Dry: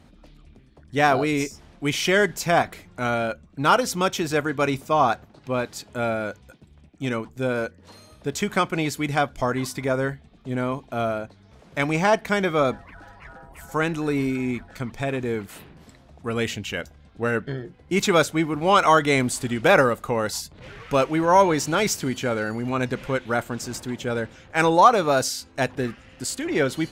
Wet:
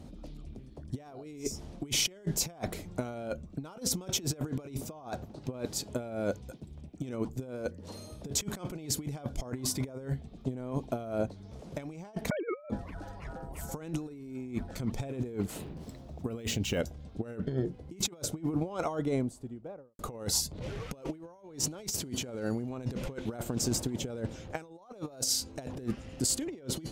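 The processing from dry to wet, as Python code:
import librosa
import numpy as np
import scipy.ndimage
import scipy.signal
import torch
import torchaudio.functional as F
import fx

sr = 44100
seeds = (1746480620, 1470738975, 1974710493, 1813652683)

y = fx.sine_speech(x, sr, at=(12.3, 12.7))
y = fx.resample_linear(y, sr, factor=2, at=(15.3, 16.79))
y = fx.studio_fade_out(y, sr, start_s=17.54, length_s=2.45)
y = fx.curve_eq(y, sr, hz=(320.0, 570.0, 1700.0, 5800.0), db=(0, -1, -13, -3))
y = fx.over_compress(y, sr, threshold_db=-32.0, ratio=-0.5)
y = y * librosa.db_to_amplitude(-2.0)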